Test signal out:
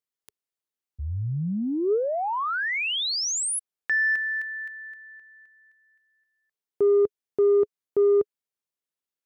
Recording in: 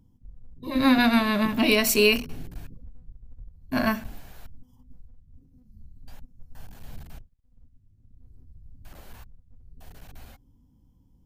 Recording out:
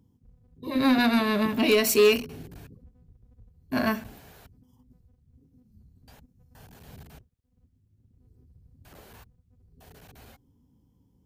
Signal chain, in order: HPF 76 Hz 12 dB/oct; bell 420 Hz +7 dB 0.33 oct; soft clip -11.5 dBFS; gain -1 dB

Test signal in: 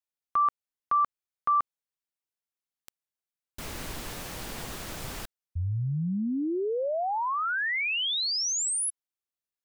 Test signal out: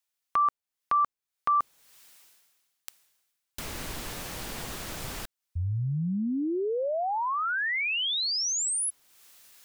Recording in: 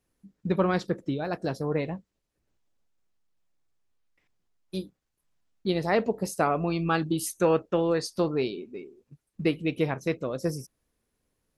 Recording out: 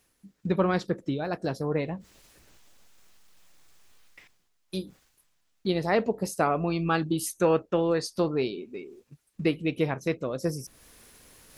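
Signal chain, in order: reverse; upward compressor, threshold -43 dBFS; reverse; mismatched tape noise reduction encoder only

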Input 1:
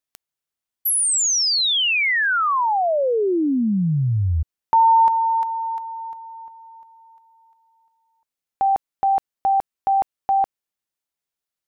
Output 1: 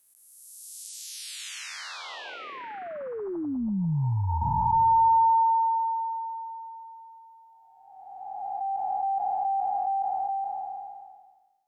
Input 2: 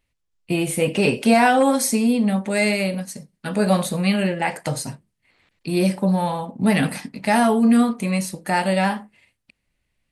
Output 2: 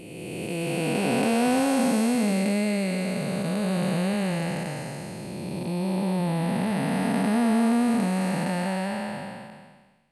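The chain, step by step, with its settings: time blur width 0.963 s

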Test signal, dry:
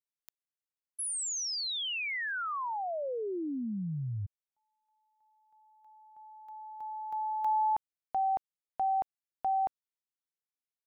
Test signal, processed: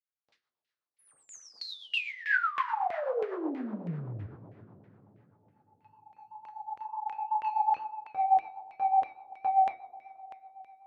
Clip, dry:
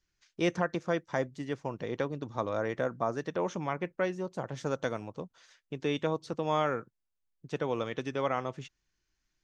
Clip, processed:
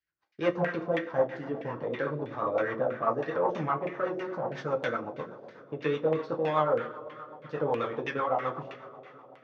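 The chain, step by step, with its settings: bell 4600 Hz +9.5 dB 1.1 oct; sample leveller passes 2; flange 2 Hz, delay 2.7 ms, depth 7.3 ms, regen +66%; two-slope reverb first 0.29 s, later 4 s, from -19 dB, DRR -0.5 dB; LFO low-pass saw down 3.1 Hz 710–2300 Hz; tone controls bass -5 dB, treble +5 dB; rotary speaker horn 8 Hz; HPF 62 Hz; gain -1.5 dB

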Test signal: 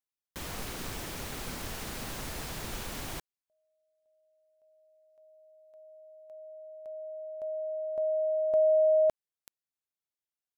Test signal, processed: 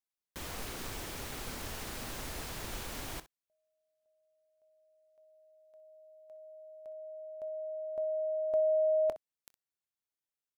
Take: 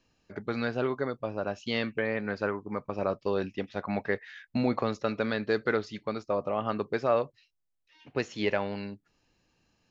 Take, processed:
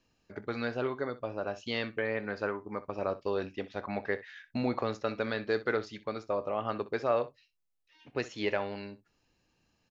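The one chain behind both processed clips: dynamic EQ 170 Hz, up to -7 dB, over -50 dBFS, Q 2; early reflections 25 ms -18 dB, 63 ms -16.5 dB; gain -2.5 dB

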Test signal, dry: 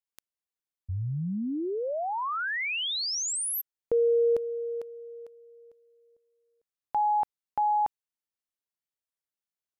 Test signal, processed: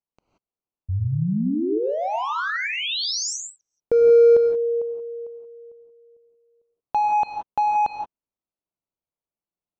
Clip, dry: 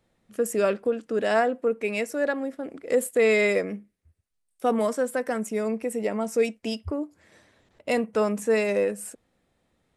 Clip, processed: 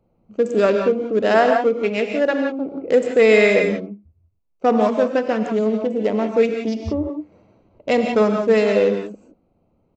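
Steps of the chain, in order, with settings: Wiener smoothing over 25 samples; non-linear reverb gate 0.2 s rising, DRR 3.5 dB; downsampling 16000 Hz; gain +7 dB

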